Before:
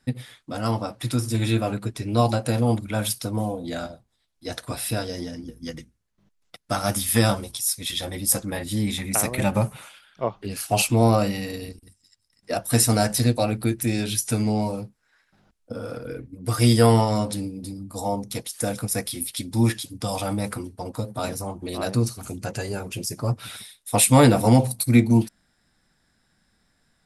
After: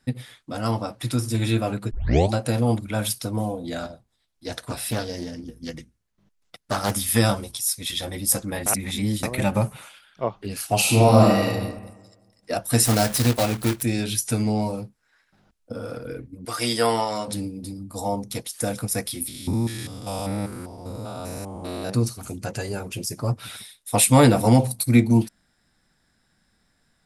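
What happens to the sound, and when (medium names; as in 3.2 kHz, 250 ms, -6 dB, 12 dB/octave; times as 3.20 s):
1.91 s: tape start 0.41 s
3.82–6.93 s: loudspeaker Doppler distortion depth 0.48 ms
8.66–9.23 s: reverse
10.80–11.46 s: reverb throw, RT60 1.2 s, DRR -3.5 dB
12.85–13.84 s: block-companded coder 3-bit
16.45–17.28 s: frequency weighting A
19.28–21.90 s: spectrogram pixelated in time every 200 ms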